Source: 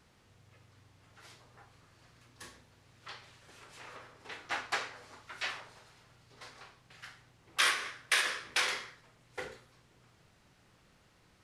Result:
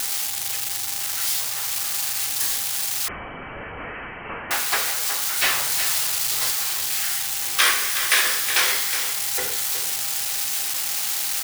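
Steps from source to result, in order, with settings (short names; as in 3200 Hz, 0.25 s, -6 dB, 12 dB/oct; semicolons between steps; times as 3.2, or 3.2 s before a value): switching spikes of -23.5 dBFS; 5.42–6.51 sample leveller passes 2; on a send: echo 0.367 s -9.5 dB; on the sum: whine 800 Hz -54 dBFS; 3.08–4.51 inverted band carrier 3100 Hz; gain +8.5 dB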